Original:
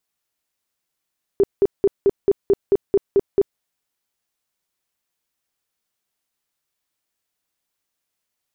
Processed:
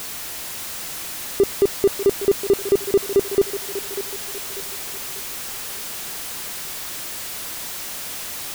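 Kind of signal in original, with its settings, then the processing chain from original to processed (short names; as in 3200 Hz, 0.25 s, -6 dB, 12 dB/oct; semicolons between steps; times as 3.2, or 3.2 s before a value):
tone bursts 397 Hz, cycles 14, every 0.22 s, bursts 10, -10.5 dBFS
zero-crossing step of -25 dBFS; on a send: thinning echo 0.593 s, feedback 53%, high-pass 350 Hz, level -10 dB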